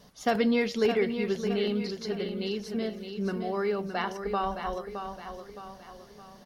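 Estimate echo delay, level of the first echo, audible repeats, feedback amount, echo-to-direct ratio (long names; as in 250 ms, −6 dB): 616 ms, −8.0 dB, 4, 45%, −7.0 dB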